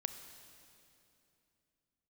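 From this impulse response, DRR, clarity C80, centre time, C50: 8.5 dB, 9.5 dB, 28 ms, 9.0 dB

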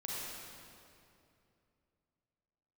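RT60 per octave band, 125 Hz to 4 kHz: 3.3, 3.1, 2.9, 2.5, 2.2, 2.0 s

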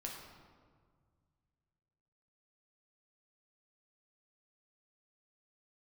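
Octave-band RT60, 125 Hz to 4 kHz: 3.1, 2.3, 1.9, 1.7, 1.3, 1.0 s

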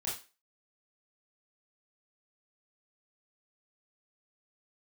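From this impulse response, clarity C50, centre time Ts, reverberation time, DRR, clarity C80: 5.5 dB, 37 ms, 0.30 s, -7.0 dB, 12.0 dB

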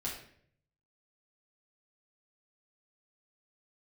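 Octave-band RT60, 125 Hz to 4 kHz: 1.1, 0.75, 0.70, 0.50, 0.60, 0.50 s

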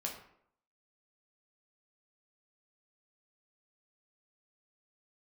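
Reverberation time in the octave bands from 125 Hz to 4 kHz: 0.60, 0.70, 0.70, 0.65, 0.55, 0.40 s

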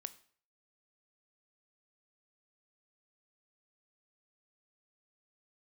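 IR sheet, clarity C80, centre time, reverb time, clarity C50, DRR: 20.5 dB, 3 ms, 0.50 s, 17.0 dB, 13.0 dB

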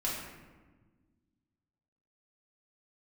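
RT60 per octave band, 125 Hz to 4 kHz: 2.2, 2.2, 1.5, 1.2, 1.1, 0.75 s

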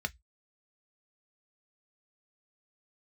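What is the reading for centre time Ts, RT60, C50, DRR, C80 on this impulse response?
2 ms, 0.10 s, 30.0 dB, 7.5 dB, 43.0 dB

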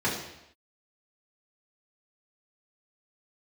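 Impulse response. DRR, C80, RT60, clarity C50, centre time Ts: -8.0 dB, 7.0 dB, not exponential, 4.5 dB, 44 ms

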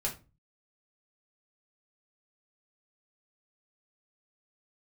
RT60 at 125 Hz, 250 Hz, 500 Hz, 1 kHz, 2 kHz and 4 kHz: 0.60, 0.45, 0.30, 0.30, 0.25, 0.20 s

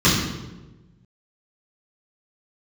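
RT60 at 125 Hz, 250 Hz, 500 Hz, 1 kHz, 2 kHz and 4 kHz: 1.7, 1.4, 1.3, 0.95, 0.85, 0.80 s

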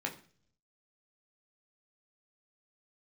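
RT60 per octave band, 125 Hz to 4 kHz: 0.95, 0.70, 0.50, 0.40, 0.45, 0.50 s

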